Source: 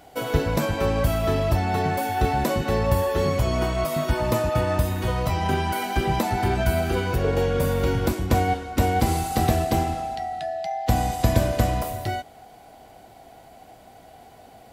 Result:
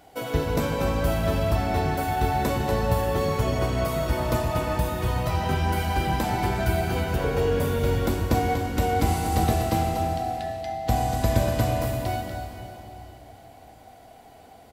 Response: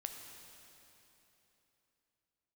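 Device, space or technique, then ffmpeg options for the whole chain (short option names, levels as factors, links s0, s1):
cave: -filter_complex "[0:a]aecho=1:1:241:0.398[s0];[1:a]atrim=start_sample=2205[s1];[s0][s1]afir=irnorm=-1:irlink=0"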